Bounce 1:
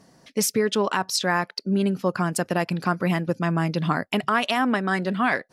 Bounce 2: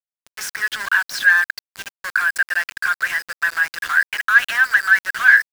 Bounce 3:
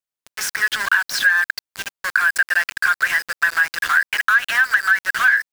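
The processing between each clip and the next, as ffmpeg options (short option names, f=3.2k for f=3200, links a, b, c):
-filter_complex "[0:a]asplit=2[a][b];[b]highpass=f=720:p=1,volume=19dB,asoftclip=type=tanh:threshold=-10dB[c];[a][c]amix=inputs=2:normalize=0,lowpass=f=6.2k:p=1,volume=-6dB,highpass=f=1.6k:t=q:w=12,aeval=exprs='val(0)*gte(abs(val(0)),0.112)':c=same,volume=-8dB"
-af "acompressor=threshold=-16dB:ratio=10,volume=4dB"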